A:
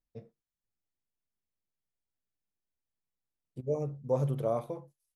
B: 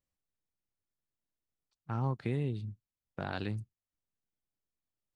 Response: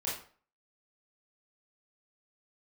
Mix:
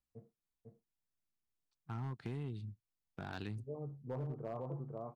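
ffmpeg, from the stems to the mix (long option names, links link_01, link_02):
-filter_complex "[0:a]lowpass=frequency=1300:width=0.5412,lowpass=frequency=1300:width=1.3066,volume=-7dB,asplit=2[link_01][link_02];[link_02]volume=-3.5dB[link_03];[1:a]volume=-5dB,asplit=2[link_04][link_05];[link_05]apad=whole_len=227270[link_06];[link_01][link_06]sidechaincompress=threshold=-44dB:ratio=8:attack=28:release=556[link_07];[link_03]aecho=0:1:499:1[link_08];[link_07][link_04][link_08]amix=inputs=3:normalize=0,equalizer=frequency=550:width=4:gain=-7.5,asoftclip=type=hard:threshold=-32dB,acompressor=threshold=-37dB:ratio=6"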